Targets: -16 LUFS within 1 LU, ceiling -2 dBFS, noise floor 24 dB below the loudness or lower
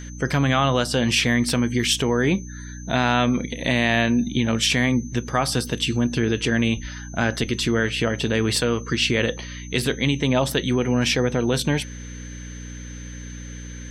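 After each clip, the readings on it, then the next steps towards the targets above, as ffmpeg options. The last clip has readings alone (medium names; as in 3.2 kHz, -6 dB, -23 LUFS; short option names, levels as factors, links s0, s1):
hum 60 Hz; highest harmonic 300 Hz; hum level -33 dBFS; steady tone 6.2 kHz; tone level -43 dBFS; loudness -21.5 LUFS; peak level -6.5 dBFS; loudness target -16.0 LUFS
-> -af "bandreject=f=60:t=h:w=4,bandreject=f=120:t=h:w=4,bandreject=f=180:t=h:w=4,bandreject=f=240:t=h:w=4,bandreject=f=300:t=h:w=4"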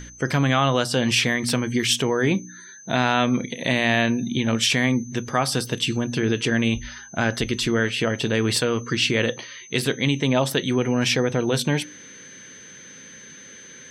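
hum not found; steady tone 6.2 kHz; tone level -43 dBFS
-> -af "bandreject=f=6200:w=30"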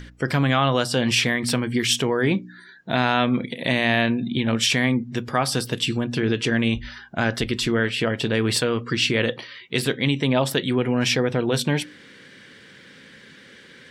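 steady tone not found; loudness -22.0 LUFS; peak level -6.5 dBFS; loudness target -16.0 LUFS
-> -af "volume=2,alimiter=limit=0.794:level=0:latency=1"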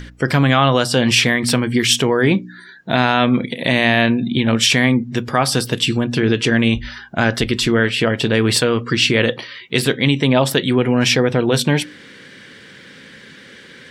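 loudness -16.0 LUFS; peak level -2.0 dBFS; noise floor -42 dBFS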